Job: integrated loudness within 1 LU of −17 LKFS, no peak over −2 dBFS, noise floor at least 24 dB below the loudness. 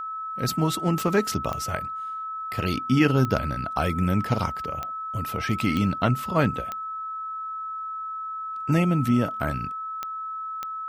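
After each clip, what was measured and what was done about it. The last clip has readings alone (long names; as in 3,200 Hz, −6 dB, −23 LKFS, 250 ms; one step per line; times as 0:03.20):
number of clicks 8; interfering tone 1,300 Hz; level of the tone −30 dBFS; integrated loudness −26.0 LKFS; sample peak −7.5 dBFS; target loudness −17.0 LKFS
→ click removal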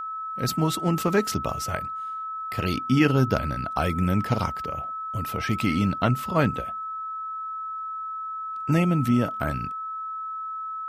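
number of clicks 0; interfering tone 1,300 Hz; level of the tone −30 dBFS
→ notch filter 1,300 Hz, Q 30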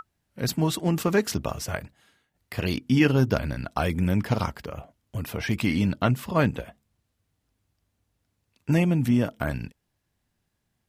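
interfering tone none found; integrated loudness −25.5 LKFS; sample peak −7.5 dBFS; target loudness −17.0 LKFS
→ level +8.5 dB
brickwall limiter −2 dBFS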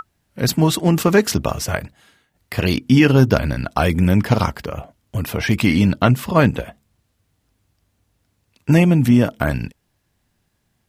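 integrated loudness −17.5 LKFS; sample peak −2.0 dBFS; background noise floor −69 dBFS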